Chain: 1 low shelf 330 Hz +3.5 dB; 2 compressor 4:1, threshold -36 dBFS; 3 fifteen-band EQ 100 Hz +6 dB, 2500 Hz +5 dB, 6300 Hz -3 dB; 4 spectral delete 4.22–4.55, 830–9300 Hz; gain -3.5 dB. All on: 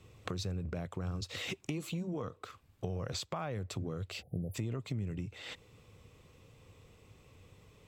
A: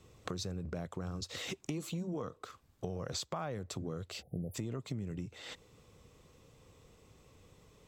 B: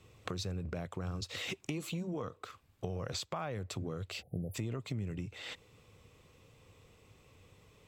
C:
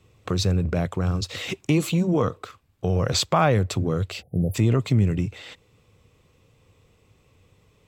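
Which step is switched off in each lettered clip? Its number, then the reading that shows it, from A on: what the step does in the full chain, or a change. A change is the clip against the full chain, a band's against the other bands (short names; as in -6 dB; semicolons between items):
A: 3, momentary loudness spread change -14 LU; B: 1, 125 Hz band -2.0 dB; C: 2, mean gain reduction 13.5 dB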